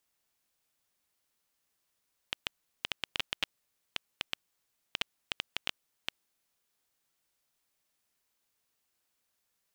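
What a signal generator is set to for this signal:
Geiger counter clicks 6 per second −12.5 dBFS 4.01 s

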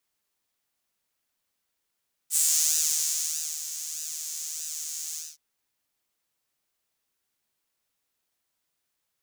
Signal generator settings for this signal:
subtractive patch with pulse-width modulation D#3, oscillator 2 saw, noise −15 dB, filter highpass, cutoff 5,800 Hz, Q 3.3, filter envelope 0.5 octaves, attack 63 ms, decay 1.22 s, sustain −13 dB, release 0.22 s, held 2.85 s, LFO 1.6 Hz, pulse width 26%, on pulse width 12%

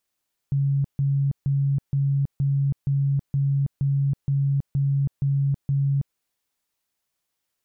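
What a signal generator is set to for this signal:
tone bursts 139 Hz, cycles 45, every 0.47 s, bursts 12, −18.5 dBFS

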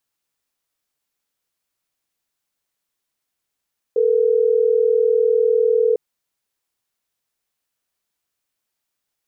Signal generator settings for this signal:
call progress tone ringback tone, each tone −16 dBFS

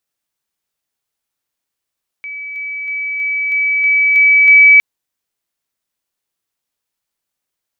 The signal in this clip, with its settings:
level staircase 2,290 Hz −24 dBFS, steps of 3 dB, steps 8, 0.32 s 0.00 s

